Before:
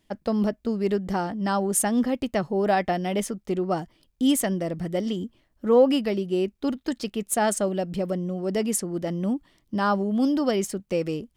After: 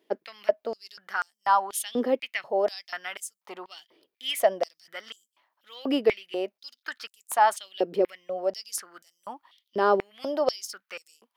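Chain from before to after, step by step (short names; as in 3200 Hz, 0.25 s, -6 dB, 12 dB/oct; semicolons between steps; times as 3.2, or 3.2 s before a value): bell 7800 Hz -10.5 dB 0.81 oct; stepped high-pass 4.1 Hz 410–7700 Hz; gain -1.5 dB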